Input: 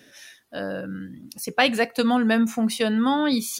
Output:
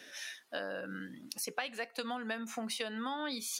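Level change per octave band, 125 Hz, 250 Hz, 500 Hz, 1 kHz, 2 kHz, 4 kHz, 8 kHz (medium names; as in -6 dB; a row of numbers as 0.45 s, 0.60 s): -17.5 dB, -20.0 dB, -15.0 dB, -14.5 dB, -12.5 dB, -11.5 dB, -7.0 dB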